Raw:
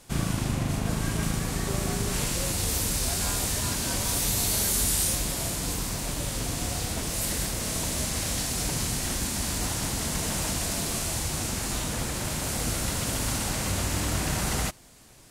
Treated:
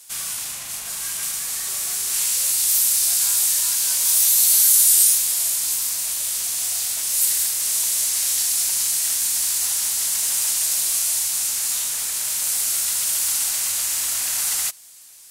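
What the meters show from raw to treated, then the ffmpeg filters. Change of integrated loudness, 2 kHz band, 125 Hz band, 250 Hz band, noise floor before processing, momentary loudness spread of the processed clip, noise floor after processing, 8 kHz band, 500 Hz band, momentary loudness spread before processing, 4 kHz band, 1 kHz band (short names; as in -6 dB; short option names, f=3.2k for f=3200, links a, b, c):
+9.5 dB, 0.0 dB, under -20 dB, under -20 dB, -32 dBFS, 10 LU, -33 dBFS, +11.0 dB, under -10 dB, 5 LU, +6.0 dB, -6.0 dB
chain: -filter_complex "[0:a]lowshelf=f=460:g=-10,acrossover=split=670[a][b];[a]asoftclip=type=tanh:threshold=-37.5dB[c];[b]acontrast=59[d];[c][d]amix=inputs=2:normalize=0,crystalizer=i=5.5:c=0,volume=-11.5dB"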